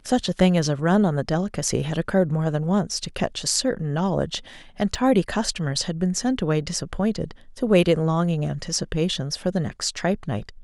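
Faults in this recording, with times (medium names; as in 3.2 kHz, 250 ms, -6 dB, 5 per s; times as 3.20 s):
4.95 s: dropout 3.8 ms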